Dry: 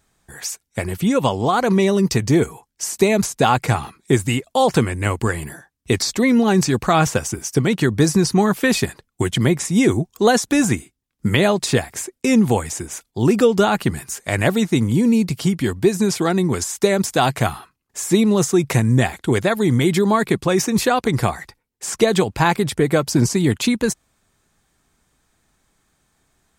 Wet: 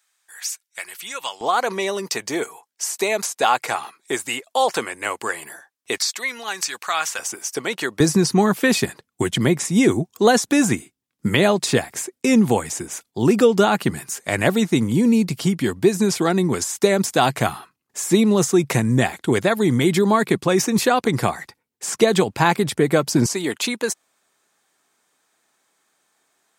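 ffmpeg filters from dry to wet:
ffmpeg -i in.wav -af "asetnsamples=nb_out_samples=441:pad=0,asendcmd='1.41 highpass f 560;5.98 highpass f 1300;7.19 highpass f 550;8 highpass f 140;23.26 highpass f 410',highpass=1500" out.wav

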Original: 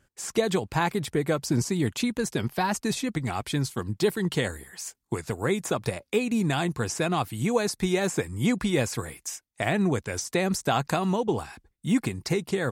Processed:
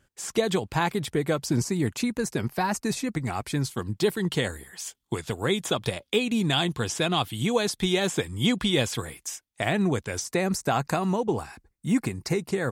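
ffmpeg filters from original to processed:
ffmpeg -i in.wav -af "asetnsamples=nb_out_samples=441:pad=0,asendcmd='1.63 equalizer g -6;3.62 equalizer g 3;4.8 equalizer g 13;9.02 equalizer g 4;10.27 equalizer g -6.5',equalizer=frequency=3300:width_type=o:width=0.39:gain=3" out.wav

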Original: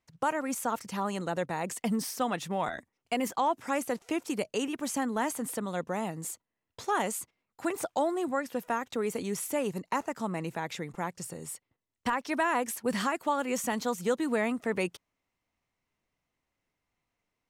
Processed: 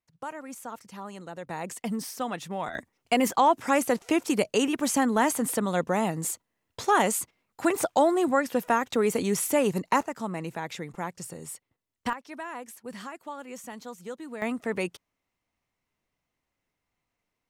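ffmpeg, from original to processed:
ffmpeg -i in.wav -af "asetnsamples=nb_out_samples=441:pad=0,asendcmd='1.47 volume volume -1.5dB;2.75 volume volume 7dB;10.03 volume volume 0.5dB;12.13 volume volume -10dB;14.42 volume volume 0.5dB',volume=-8dB" out.wav

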